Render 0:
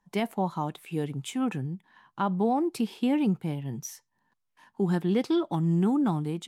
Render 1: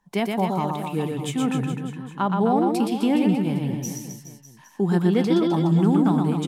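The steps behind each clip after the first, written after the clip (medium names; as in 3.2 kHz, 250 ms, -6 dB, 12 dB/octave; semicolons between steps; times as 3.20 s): reverse bouncing-ball echo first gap 120 ms, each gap 1.15×, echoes 5; trim +4 dB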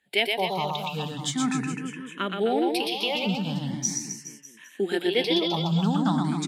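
frequency weighting D; barber-pole phaser +0.41 Hz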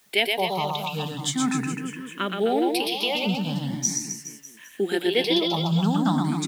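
treble shelf 12 kHz +9.5 dB; added noise white -62 dBFS; trim +1.5 dB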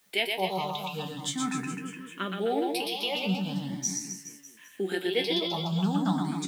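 feedback comb 94 Hz, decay 0.17 s, harmonics all, mix 80%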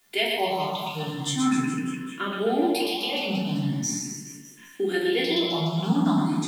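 simulated room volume 890 m³, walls furnished, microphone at 3.2 m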